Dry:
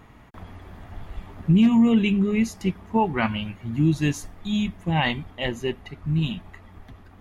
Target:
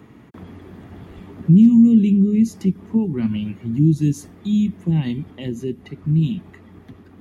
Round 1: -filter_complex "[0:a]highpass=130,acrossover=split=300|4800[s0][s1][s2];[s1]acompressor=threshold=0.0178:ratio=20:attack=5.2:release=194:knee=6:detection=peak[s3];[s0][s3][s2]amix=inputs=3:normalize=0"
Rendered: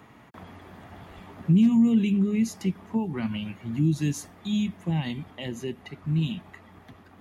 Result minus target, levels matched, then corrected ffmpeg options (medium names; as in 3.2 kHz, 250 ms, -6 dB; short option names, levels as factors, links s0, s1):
500 Hz band +2.5 dB
-filter_complex "[0:a]highpass=130,lowshelf=f=510:t=q:w=1.5:g=7.5,acrossover=split=300|4800[s0][s1][s2];[s1]acompressor=threshold=0.0178:ratio=20:attack=5.2:release=194:knee=6:detection=peak[s3];[s0][s3][s2]amix=inputs=3:normalize=0"